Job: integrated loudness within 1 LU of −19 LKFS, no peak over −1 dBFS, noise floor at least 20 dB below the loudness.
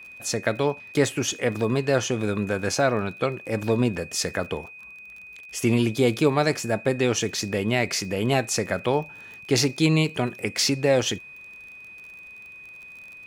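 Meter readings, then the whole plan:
crackle rate 36 per second; interfering tone 2,500 Hz; level of the tone −41 dBFS; integrated loudness −24.0 LKFS; sample peak −7.0 dBFS; target loudness −19.0 LKFS
→ click removal
notch filter 2,500 Hz, Q 30
level +5 dB

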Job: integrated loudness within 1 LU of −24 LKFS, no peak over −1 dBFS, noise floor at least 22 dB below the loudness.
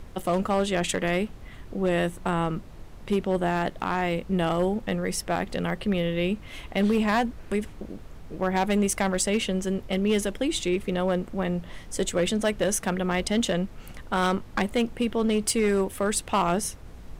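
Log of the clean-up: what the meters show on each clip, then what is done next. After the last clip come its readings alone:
share of clipped samples 0.9%; peaks flattened at −17.0 dBFS; background noise floor −44 dBFS; target noise floor −49 dBFS; integrated loudness −26.5 LKFS; sample peak −17.0 dBFS; target loudness −24.0 LKFS
→ clipped peaks rebuilt −17 dBFS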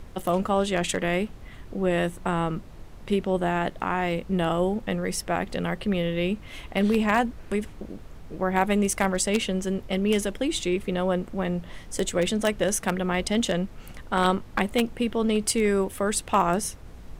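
share of clipped samples 0.0%; background noise floor −44 dBFS; target noise floor −48 dBFS
→ noise reduction from a noise print 6 dB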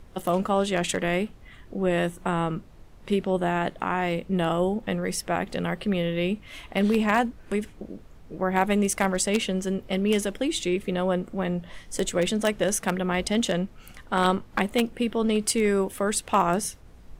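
background noise floor −49 dBFS; integrated loudness −26.0 LKFS; sample peak −8.0 dBFS; target loudness −24.0 LKFS
→ level +2 dB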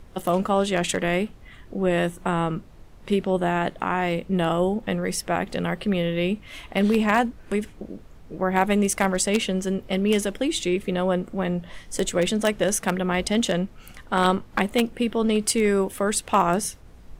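integrated loudness −24.0 LKFS; sample peak −6.0 dBFS; background noise floor −47 dBFS

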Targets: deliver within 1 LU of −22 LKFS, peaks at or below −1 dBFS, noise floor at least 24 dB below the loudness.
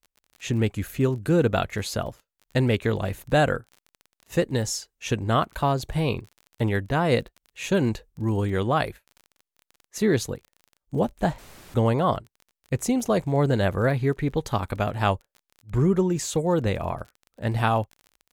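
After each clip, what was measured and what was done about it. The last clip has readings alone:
crackle rate 31 per second; integrated loudness −25.5 LKFS; sample peak −9.0 dBFS; target loudness −22.0 LKFS
→ click removal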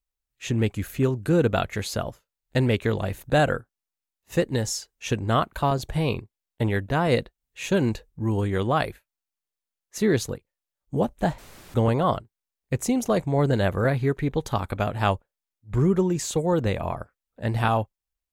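crackle rate 0 per second; integrated loudness −25.5 LKFS; sample peak −9.0 dBFS; target loudness −22.0 LKFS
→ level +3.5 dB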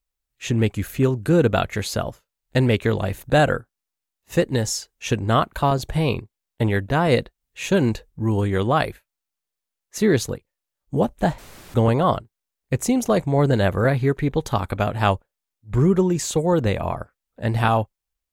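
integrated loudness −22.0 LKFS; sample peak −5.5 dBFS; background noise floor −85 dBFS

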